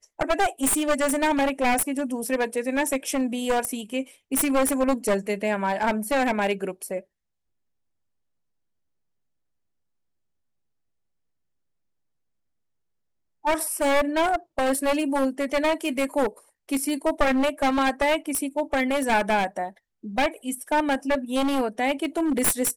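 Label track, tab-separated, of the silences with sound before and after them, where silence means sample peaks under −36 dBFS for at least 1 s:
7.000000	13.450000	silence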